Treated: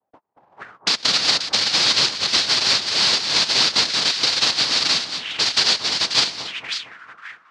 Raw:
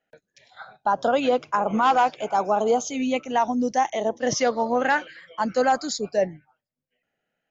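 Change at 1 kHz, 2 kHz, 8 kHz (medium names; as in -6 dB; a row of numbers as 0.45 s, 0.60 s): -8.5 dB, +6.0 dB, no reading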